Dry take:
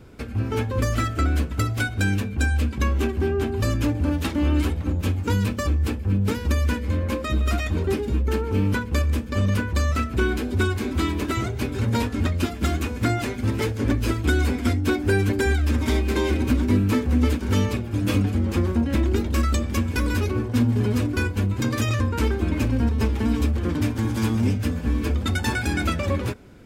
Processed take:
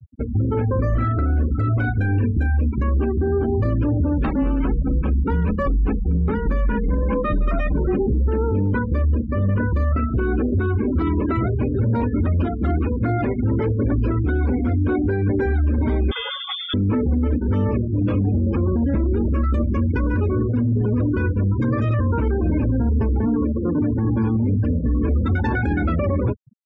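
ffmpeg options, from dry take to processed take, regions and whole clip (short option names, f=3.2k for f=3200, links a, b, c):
-filter_complex "[0:a]asettb=1/sr,asplit=3[a][b][c];[a]atrim=end=0.894[d];[b]atrim=start=0.89:end=2.46,asetpts=PTS-STARTPTS,afade=t=in:d=0.004:c=qsin,afade=t=out:st=1.566:d=0.004:c=qsin,lowshelf=f=88:g=4,asplit=2[e][f];[f]adelay=38,volume=-5dB[g];[e][g]amix=inputs=2:normalize=0,atrim=end_sample=69237[h];[c]atrim=start=2.456[i];[d][h]acrossfade=d=0.004:c1=hsin:c2=qsin[j];[j][i]acrossfade=d=0.004:c1=qsin:c2=hsin,asettb=1/sr,asplit=3[k][l][m];[k]atrim=end=4.184[n];[l]atrim=start=4.18:end=8.07,asetpts=PTS-STARTPTS,afade=t=in:d=0.004:c=qsin,afade=t=out:st=3.886:d=0.004:c=qsin,equalizer=f=1.5k:w=0.49:g=3,afreqshift=-25[o];[m]atrim=start=8.066[p];[n][o]acrossfade=d=0.004:c1=hsin:c2=qsin[q];[q][p]acrossfade=d=0.004:c1=qsin:c2=hsin,asettb=1/sr,asplit=3[r][s][t];[r]atrim=end=16.114[u];[s]atrim=start=16.11:end=16.74,asetpts=PTS-STARTPTS,afade=t=in:d=0.004:c=qsin,afade=t=out:st=0.626:d=0.004:c=qsin,aemphasis=mode=production:type=50fm,acrusher=bits=4:mix=0:aa=0.5,lowpass=f=3.1k:t=q:w=0.5098,lowpass=f=3.1k:t=q:w=0.6013,lowpass=f=3.1k:t=q:w=0.9,lowpass=f=3.1k:t=q:w=2.563,afreqshift=-3600[v];[t]atrim=start=16.736[w];[u][v]acrossfade=d=0.004:c1=hsin:c2=qsin[x];[x][w]acrossfade=d=0.004:c1=qsin:c2=hsin,asettb=1/sr,asplit=3[y][z][aa];[y]atrim=end=23.274[ab];[z]atrim=start=23.27:end=23.91,asetpts=PTS-STARTPTS,afade=t=in:d=0.004:c=qsin,afade=t=out:st=0.636:d=0.004:c=qsin,highpass=140,lowpass=2.1k,bandreject=f=650:w=18[ac];[aa]atrim=start=23.906[ad];[ab][ac]acrossfade=d=0.004:c1=hsin:c2=qsin[ae];[ae][ad]acrossfade=d=0.004:c1=qsin:c2=hsin,afftfilt=real='re*gte(hypot(re,im),0.0447)':imag='im*gte(hypot(re,im),0.0447)':win_size=1024:overlap=0.75,lowpass=1.3k,alimiter=limit=-21.5dB:level=0:latency=1:release=14,volume=8dB"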